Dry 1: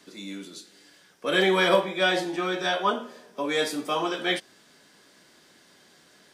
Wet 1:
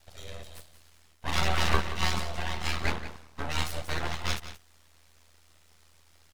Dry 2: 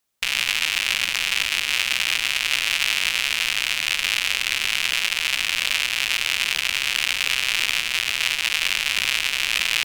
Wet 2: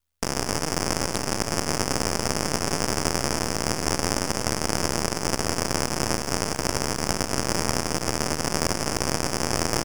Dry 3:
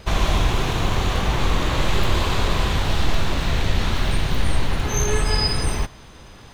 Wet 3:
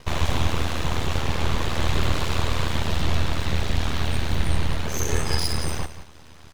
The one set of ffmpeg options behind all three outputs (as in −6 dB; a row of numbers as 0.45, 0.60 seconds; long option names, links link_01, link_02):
-af "aeval=exprs='val(0)*sin(2*PI*40*n/s)':channel_layout=same,aeval=exprs='abs(val(0))':channel_layout=same,aecho=1:1:177:0.224"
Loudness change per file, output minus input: −6.0, −5.0, −3.5 LU